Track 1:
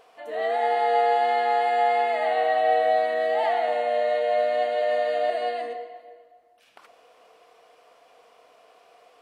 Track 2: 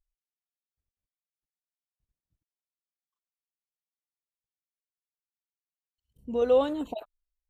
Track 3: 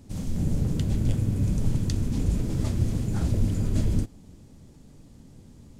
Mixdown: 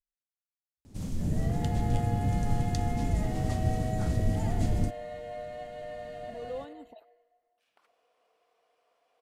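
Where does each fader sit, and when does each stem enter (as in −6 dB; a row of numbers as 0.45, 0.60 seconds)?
−17.0, −16.5, −3.5 decibels; 1.00, 0.00, 0.85 seconds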